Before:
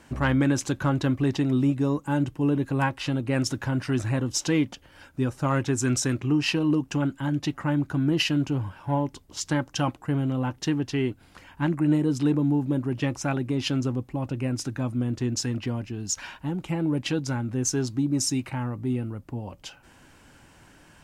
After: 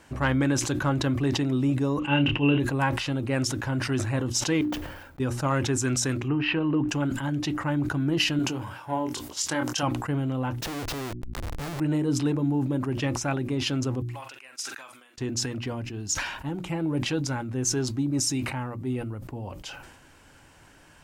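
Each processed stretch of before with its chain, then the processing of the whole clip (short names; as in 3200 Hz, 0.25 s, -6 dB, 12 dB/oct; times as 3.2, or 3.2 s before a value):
1.99–2.6 synth low-pass 2800 Hz, resonance Q 10 + doubler 28 ms -6 dB
4.61–5.2 block floating point 3-bit + bell 7900 Hz -12.5 dB 2.9 oct + compressor 5:1, threshold -41 dBFS
6.28–6.89 LPF 3000 Hz 24 dB/oct + bell 1600 Hz +4 dB 0.89 oct
8.39–9.83 HPF 300 Hz 6 dB/oct + high shelf 7800 Hz +5.5 dB + doubler 24 ms -8 dB
10.62–11.8 low shelf 71 Hz +7.5 dB + compressor 1.5:1, threshold -31 dBFS + Schmitt trigger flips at -43 dBFS
14.02–15.18 HPF 1500 Hz + doubler 45 ms -11 dB + upward expander, over -52 dBFS
whole clip: bell 200 Hz -4 dB 0.9 oct; notches 60/120/180/240/300/360 Hz; sustainer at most 53 dB/s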